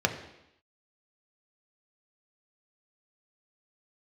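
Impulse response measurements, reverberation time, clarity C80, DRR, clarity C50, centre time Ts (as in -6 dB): 0.85 s, 12.0 dB, 4.0 dB, 10.0 dB, 15 ms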